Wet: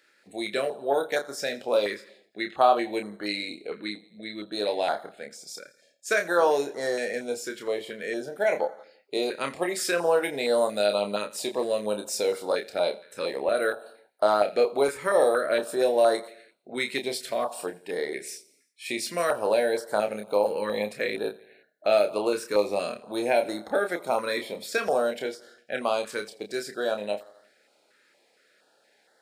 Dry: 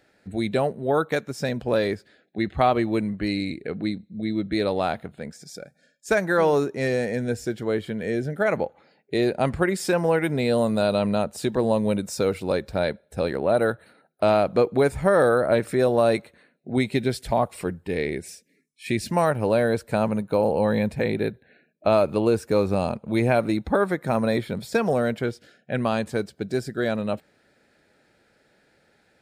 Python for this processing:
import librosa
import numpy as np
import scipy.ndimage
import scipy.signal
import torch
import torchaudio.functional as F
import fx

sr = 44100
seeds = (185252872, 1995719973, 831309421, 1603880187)

p1 = scipy.signal.sosfilt(scipy.signal.butter(2, 570.0, 'highpass', fs=sr, output='sos'), x)
p2 = p1 + fx.echo_feedback(p1, sr, ms=84, feedback_pct=57, wet_db=-20.5, dry=0)
p3 = fx.quant_float(p2, sr, bits=8)
p4 = fx.doubler(p3, sr, ms=29.0, db=-6.0)
p5 = fx.filter_held_notch(p4, sr, hz=4.3, low_hz=720.0, high_hz=2500.0)
y = p5 * librosa.db_to_amplitude(2.0)